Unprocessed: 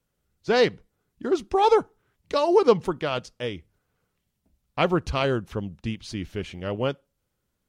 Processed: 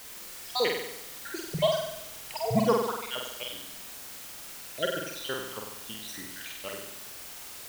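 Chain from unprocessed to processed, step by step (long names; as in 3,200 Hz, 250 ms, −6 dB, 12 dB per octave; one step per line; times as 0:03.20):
time-frequency cells dropped at random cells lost 72%
high-pass filter 1,500 Hz 6 dB per octave
in parallel at −10 dB: bit-depth reduction 6 bits, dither triangular
0:01.54–0:02.63: on the sum: frequency shifter −230 Hz
on a send: flutter between parallel walls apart 8.1 metres, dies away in 0.85 s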